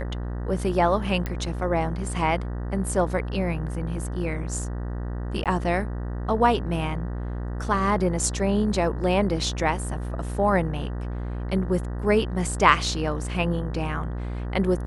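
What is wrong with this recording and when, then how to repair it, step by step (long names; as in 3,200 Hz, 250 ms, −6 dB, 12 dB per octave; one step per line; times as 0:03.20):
mains buzz 60 Hz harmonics 32 −30 dBFS
0:01.26: click −15 dBFS
0:05.44–0:05.46: drop-out 17 ms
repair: click removal
hum removal 60 Hz, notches 32
repair the gap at 0:05.44, 17 ms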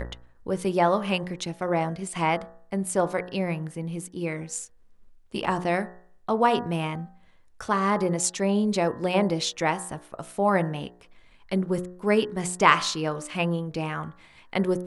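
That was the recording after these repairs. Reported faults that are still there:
none of them is left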